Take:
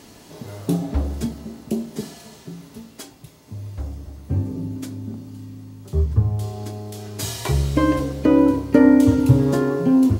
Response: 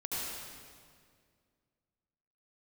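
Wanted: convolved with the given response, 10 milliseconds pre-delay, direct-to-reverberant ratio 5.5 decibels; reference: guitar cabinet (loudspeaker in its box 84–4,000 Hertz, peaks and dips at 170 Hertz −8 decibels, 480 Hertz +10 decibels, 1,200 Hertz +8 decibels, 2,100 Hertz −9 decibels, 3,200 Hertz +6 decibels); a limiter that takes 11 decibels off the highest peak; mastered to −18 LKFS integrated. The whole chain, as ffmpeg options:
-filter_complex "[0:a]alimiter=limit=-12.5dB:level=0:latency=1,asplit=2[link_01][link_02];[1:a]atrim=start_sample=2205,adelay=10[link_03];[link_02][link_03]afir=irnorm=-1:irlink=0,volume=-9.5dB[link_04];[link_01][link_04]amix=inputs=2:normalize=0,highpass=84,equalizer=frequency=170:width_type=q:width=4:gain=-8,equalizer=frequency=480:width_type=q:width=4:gain=10,equalizer=frequency=1200:width_type=q:width=4:gain=8,equalizer=frequency=2100:width_type=q:width=4:gain=-9,equalizer=frequency=3200:width_type=q:width=4:gain=6,lowpass=frequency=4000:width=0.5412,lowpass=frequency=4000:width=1.3066,volume=3dB"

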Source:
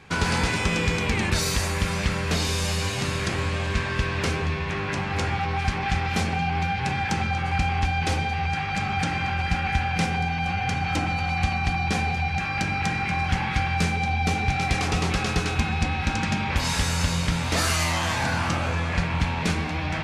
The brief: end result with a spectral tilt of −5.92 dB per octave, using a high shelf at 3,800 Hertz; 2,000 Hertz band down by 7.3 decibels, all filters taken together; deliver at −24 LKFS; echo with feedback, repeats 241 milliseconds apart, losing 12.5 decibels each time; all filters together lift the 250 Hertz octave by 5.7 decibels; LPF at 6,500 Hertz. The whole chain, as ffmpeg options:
ffmpeg -i in.wav -af "lowpass=6500,equalizer=frequency=250:width_type=o:gain=8.5,equalizer=frequency=2000:width_type=o:gain=-8.5,highshelf=frequency=3800:gain=-4,aecho=1:1:241|482|723:0.237|0.0569|0.0137,volume=0.5dB" out.wav

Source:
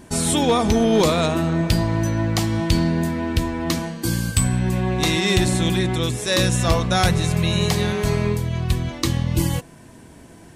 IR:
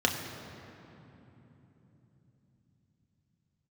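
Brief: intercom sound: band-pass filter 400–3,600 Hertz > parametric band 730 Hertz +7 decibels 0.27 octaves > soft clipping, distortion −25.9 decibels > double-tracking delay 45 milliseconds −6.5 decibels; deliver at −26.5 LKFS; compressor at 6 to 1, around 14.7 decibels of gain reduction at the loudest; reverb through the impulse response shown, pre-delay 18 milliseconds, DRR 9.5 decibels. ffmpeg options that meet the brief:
-filter_complex "[0:a]acompressor=threshold=-30dB:ratio=6,asplit=2[link_01][link_02];[1:a]atrim=start_sample=2205,adelay=18[link_03];[link_02][link_03]afir=irnorm=-1:irlink=0,volume=-21dB[link_04];[link_01][link_04]amix=inputs=2:normalize=0,highpass=400,lowpass=3600,equalizer=frequency=730:width_type=o:width=0.27:gain=7,asoftclip=threshold=-22dB,asplit=2[link_05][link_06];[link_06]adelay=45,volume=-6.5dB[link_07];[link_05][link_07]amix=inputs=2:normalize=0,volume=9.5dB"

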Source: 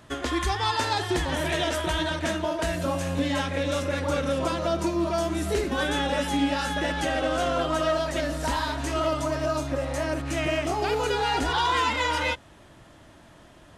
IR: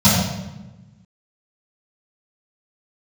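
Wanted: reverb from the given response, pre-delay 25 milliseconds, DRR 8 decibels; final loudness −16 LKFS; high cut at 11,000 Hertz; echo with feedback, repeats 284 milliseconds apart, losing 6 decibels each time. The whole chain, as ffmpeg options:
-filter_complex "[0:a]lowpass=11000,aecho=1:1:284|568|852|1136|1420|1704:0.501|0.251|0.125|0.0626|0.0313|0.0157,asplit=2[link_01][link_02];[1:a]atrim=start_sample=2205,adelay=25[link_03];[link_02][link_03]afir=irnorm=-1:irlink=0,volume=-31.5dB[link_04];[link_01][link_04]amix=inputs=2:normalize=0,volume=8dB"

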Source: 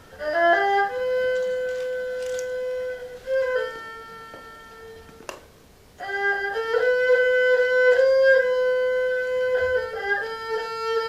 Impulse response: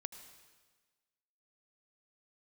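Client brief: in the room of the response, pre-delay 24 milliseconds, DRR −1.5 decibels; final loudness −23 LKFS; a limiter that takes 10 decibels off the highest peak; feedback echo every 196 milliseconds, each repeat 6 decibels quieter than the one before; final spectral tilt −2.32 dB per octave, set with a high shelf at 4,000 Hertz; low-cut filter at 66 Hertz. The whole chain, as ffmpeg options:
-filter_complex "[0:a]highpass=66,highshelf=frequency=4000:gain=3.5,alimiter=limit=-17dB:level=0:latency=1,aecho=1:1:196|392|588|784|980|1176:0.501|0.251|0.125|0.0626|0.0313|0.0157,asplit=2[link_01][link_02];[1:a]atrim=start_sample=2205,adelay=24[link_03];[link_02][link_03]afir=irnorm=-1:irlink=0,volume=4.5dB[link_04];[link_01][link_04]amix=inputs=2:normalize=0,volume=-3.5dB"

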